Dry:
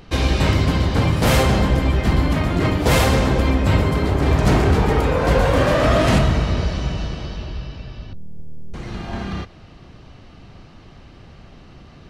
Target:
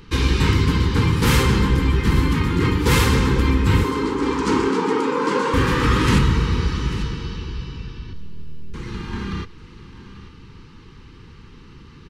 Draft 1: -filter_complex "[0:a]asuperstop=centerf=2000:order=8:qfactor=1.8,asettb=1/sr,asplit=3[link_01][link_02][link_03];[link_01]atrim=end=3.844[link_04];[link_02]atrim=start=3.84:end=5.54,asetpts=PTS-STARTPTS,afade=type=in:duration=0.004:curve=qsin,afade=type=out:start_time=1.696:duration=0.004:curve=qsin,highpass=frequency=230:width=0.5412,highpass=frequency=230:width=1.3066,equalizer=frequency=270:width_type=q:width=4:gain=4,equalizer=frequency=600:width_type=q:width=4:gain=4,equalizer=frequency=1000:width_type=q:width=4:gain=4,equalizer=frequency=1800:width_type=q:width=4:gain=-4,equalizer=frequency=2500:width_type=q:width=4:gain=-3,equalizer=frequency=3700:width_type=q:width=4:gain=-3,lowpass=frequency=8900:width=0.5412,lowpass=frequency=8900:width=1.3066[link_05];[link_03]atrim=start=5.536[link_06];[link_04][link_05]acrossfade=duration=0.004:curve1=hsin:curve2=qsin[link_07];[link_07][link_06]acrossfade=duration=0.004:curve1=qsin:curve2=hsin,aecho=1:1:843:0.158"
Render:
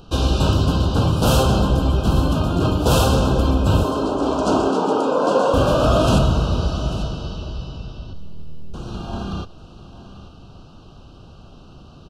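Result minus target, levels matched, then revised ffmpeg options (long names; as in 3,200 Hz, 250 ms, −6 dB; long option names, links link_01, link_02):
2,000 Hz band −8.5 dB
-filter_complex "[0:a]asuperstop=centerf=650:order=8:qfactor=1.8,asettb=1/sr,asplit=3[link_01][link_02][link_03];[link_01]atrim=end=3.844[link_04];[link_02]atrim=start=3.84:end=5.54,asetpts=PTS-STARTPTS,afade=type=in:duration=0.004:curve=qsin,afade=type=out:start_time=1.696:duration=0.004:curve=qsin,highpass=frequency=230:width=0.5412,highpass=frequency=230:width=1.3066,equalizer=frequency=270:width_type=q:width=4:gain=4,equalizer=frequency=600:width_type=q:width=4:gain=4,equalizer=frequency=1000:width_type=q:width=4:gain=4,equalizer=frequency=1800:width_type=q:width=4:gain=-4,equalizer=frequency=2500:width_type=q:width=4:gain=-3,equalizer=frequency=3700:width_type=q:width=4:gain=-3,lowpass=frequency=8900:width=0.5412,lowpass=frequency=8900:width=1.3066[link_05];[link_03]atrim=start=5.536[link_06];[link_04][link_05]acrossfade=duration=0.004:curve1=hsin:curve2=qsin[link_07];[link_07][link_06]acrossfade=duration=0.004:curve1=qsin:curve2=hsin,aecho=1:1:843:0.158"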